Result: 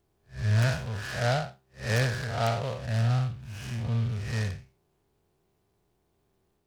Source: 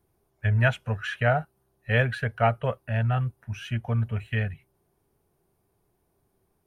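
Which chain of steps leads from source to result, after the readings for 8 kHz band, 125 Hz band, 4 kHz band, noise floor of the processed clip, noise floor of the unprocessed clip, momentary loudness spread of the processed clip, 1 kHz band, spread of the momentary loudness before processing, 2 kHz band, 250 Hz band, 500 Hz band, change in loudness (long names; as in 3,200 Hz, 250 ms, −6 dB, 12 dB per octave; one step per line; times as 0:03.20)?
can't be measured, −1.0 dB, +2.5 dB, −73 dBFS, −73 dBFS, 12 LU, −4.5 dB, 9 LU, −5.5 dB, −2.0 dB, −4.0 dB, −2.5 dB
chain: spectrum smeared in time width 166 ms
in parallel at −3 dB: wrap-around overflow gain 16 dB
on the sum: short delay modulated by noise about 2,700 Hz, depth 0.053 ms
level −4 dB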